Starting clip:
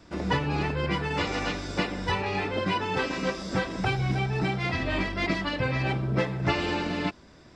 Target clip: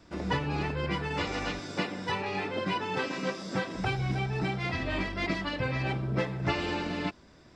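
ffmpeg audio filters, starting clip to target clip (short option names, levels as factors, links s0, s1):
-filter_complex "[0:a]asettb=1/sr,asplit=3[s0][s1][s2];[s0]atrim=end=1.594[s3];[s1]atrim=start=1.59:end=3.75,asetpts=PTS-STARTPTS,afade=t=in:d=0.004:c=qsin,afade=t=out:st=2.156:d=0.004:c=qsin,highpass=f=110:w=0.5412,highpass=f=110:w=1.3066[s4];[s2]atrim=start=3.746[s5];[s3][s4]acrossfade=d=0.004:c1=hsin:c2=qsin[s6];[s6][s5]acrossfade=d=0.004:c1=qsin:c2=hsin,volume=0.668"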